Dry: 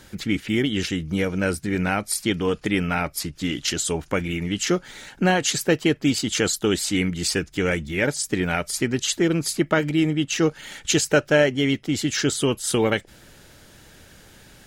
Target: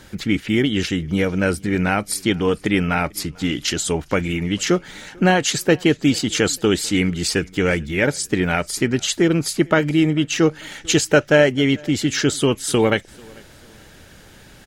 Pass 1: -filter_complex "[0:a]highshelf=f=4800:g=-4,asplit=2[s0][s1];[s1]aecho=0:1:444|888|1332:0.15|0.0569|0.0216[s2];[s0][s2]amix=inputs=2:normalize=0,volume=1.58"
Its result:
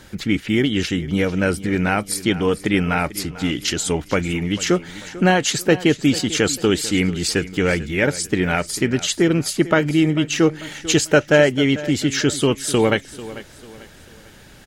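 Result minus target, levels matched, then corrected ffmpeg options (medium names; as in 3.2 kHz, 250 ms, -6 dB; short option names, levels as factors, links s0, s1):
echo-to-direct +10 dB
-filter_complex "[0:a]highshelf=f=4800:g=-4,asplit=2[s0][s1];[s1]aecho=0:1:444|888:0.0473|0.018[s2];[s0][s2]amix=inputs=2:normalize=0,volume=1.58"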